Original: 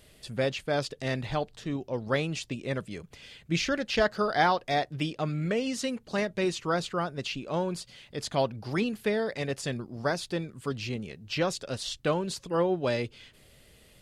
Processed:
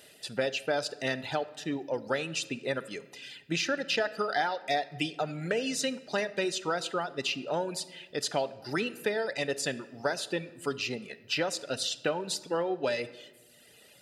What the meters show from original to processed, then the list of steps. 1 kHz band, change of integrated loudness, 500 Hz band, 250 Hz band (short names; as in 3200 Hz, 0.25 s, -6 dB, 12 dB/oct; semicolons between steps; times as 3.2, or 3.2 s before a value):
-2.5 dB, -1.5 dB, -1.5 dB, -4.5 dB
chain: reverb removal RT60 1 s; HPF 480 Hz 6 dB/oct; compressor 6:1, threshold -32 dBFS, peak gain reduction 11.5 dB; notch comb 1100 Hz; shoebox room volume 840 m³, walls mixed, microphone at 0.3 m; gain +6.5 dB